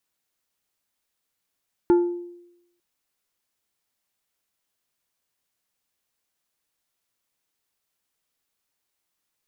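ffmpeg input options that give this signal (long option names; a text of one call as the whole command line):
ffmpeg -f lavfi -i "aevalsrc='0.266*pow(10,-3*t/0.86)*sin(2*PI*349*t)+0.0668*pow(10,-3*t/0.453)*sin(2*PI*872.5*t)+0.0168*pow(10,-3*t/0.326)*sin(2*PI*1396*t)+0.00422*pow(10,-3*t/0.279)*sin(2*PI*1745*t)+0.00106*pow(10,-3*t/0.232)*sin(2*PI*2268.5*t)':duration=0.9:sample_rate=44100" out.wav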